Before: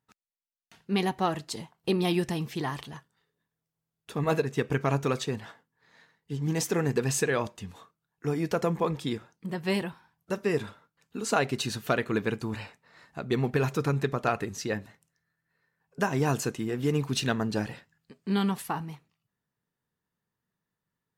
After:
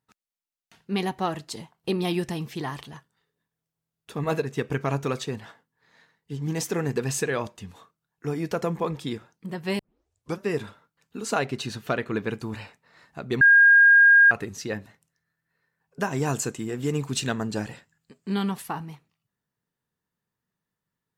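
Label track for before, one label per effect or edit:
9.790000	9.790000	tape start 0.62 s
11.440000	12.300000	treble shelf 6.7 kHz -8 dB
13.410000	14.310000	bleep 1.62 kHz -11 dBFS
16.110000	18.340000	peaking EQ 7.5 kHz +10.5 dB 0.28 oct

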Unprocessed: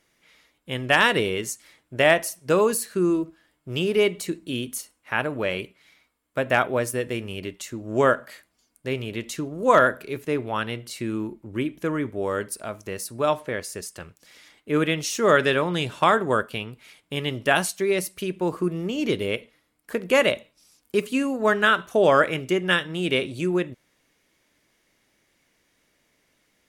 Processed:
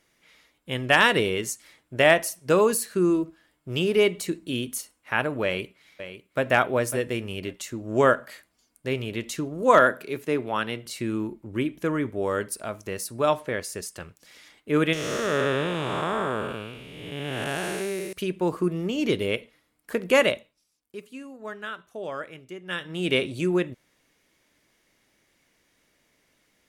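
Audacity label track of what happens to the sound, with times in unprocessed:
5.440000	6.460000	echo throw 550 ms, feedback 15%, level -11.5 dB
9.620000	10.860000	high-pass 140 Hz
14.930000	18.130000	spectral blur width 405 ms
20.190000	23.120000	dip -16.5 dB, fades 0.47 s

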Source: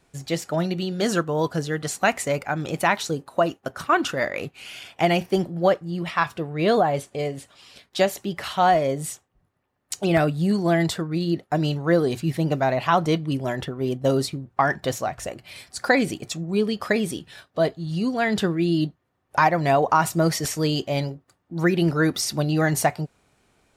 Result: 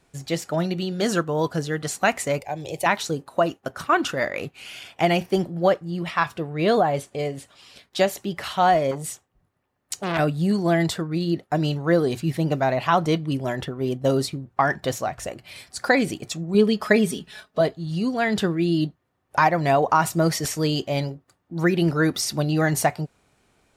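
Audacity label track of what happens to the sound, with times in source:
2.400000	2.860000	static phaser centre 560 Hz, stages 4
8.910000	10.190000	transformer saturation saturates under 1.8 kHz
16.540000	17.610000	comb 4.7 ms, depth 75%

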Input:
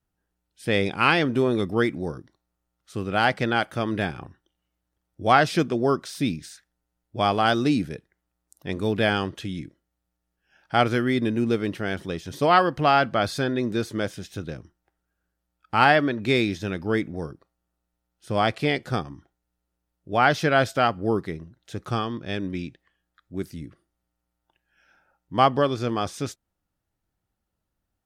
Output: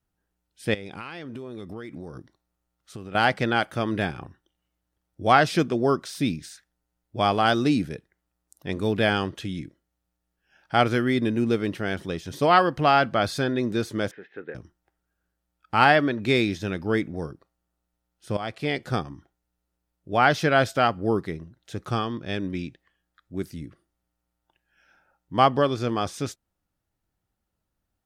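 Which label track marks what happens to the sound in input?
0.740000	3.150000	compression 12:1, threshold -33 dBFS
14.110000	14.550000	cabinet simulation 430–2100 Hz, peaks and dips at 440 Hz +7 dB, 640 Hz -9 dB, 1.1 kHz -7 dB, 1.8 kHz +8 dB
18.370000	18.900000	fade in, from -14.5 dB

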